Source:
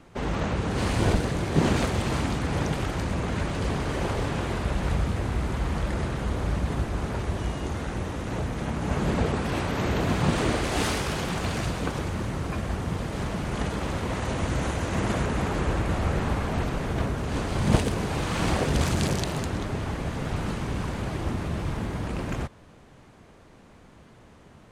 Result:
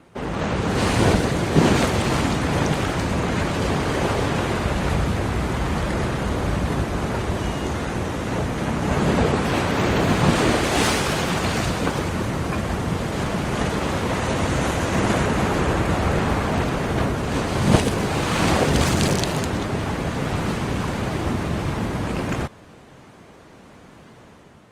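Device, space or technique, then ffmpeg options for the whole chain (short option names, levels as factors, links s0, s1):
video call: -af "highpass=f=110:p=1,dynaudnorm=f=140:g=7:m=1.68,volume=1.41" -ar 48000 -c:a libopus -b:a 32k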